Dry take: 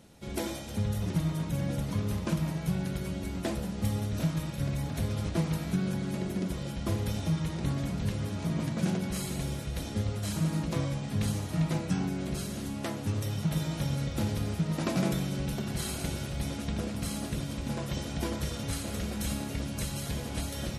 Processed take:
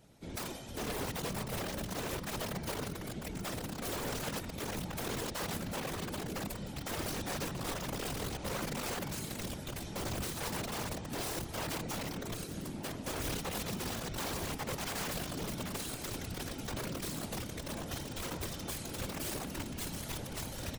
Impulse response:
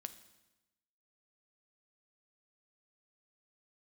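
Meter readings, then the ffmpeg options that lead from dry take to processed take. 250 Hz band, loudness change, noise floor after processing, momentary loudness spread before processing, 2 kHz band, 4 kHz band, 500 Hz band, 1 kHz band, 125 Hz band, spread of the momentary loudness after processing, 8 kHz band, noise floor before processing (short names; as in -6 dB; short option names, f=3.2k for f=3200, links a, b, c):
-9.0 dB, -6.0 dB, -44 dBFS, 4 LU, +0.5 dB, -0.5 dB, -2.5 dB, +0.5 dB, -12.0 dB, 4 LU, 0.0 dB, -38 dBFS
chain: -filter_complex "[0:a]asplit=2[a][b];[b]adelay=67,lowpass=f=1.6k:p=1,volume=-11dB,asplit=2[c][d];[d]adelay=67,lowpass=f=1.6k:p=1,volume=0.34,asplit=2[e][f];[f]adelay=67,lowpass=f=1.6k:p=1,volume=0.34,asplit=2[g][h];[h]adelay=67,lowpass=f=1.6k:p=1,volume=0.34[i];[a][c][e][g][i]amix=inputs=5:normalize=0,aeval=exprs='(mod(21.1*val(0)+1,2)-1)/21.1':c=same,afftfilt=real='hypot(re,im)*cos(2*PI*random(0))':imag='hypot(re,im)*sin(2*PI*random(1))':win_size=512:overlap=0.75"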